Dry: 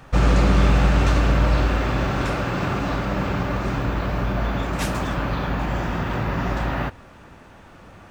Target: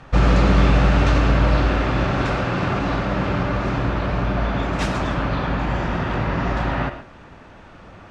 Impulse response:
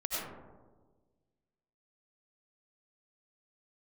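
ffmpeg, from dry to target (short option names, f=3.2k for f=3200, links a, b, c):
-filter_complex "[0:a]lowpass=5.6k,asplit=2[a][b];[1:a]atrim=start_sample=2205,atrim=end_sample=6615[c];[b][c]afir=irnorm=-1:irlink=0,volume=-10dB[d];[a][d]amix=inputs=2:normalize=0"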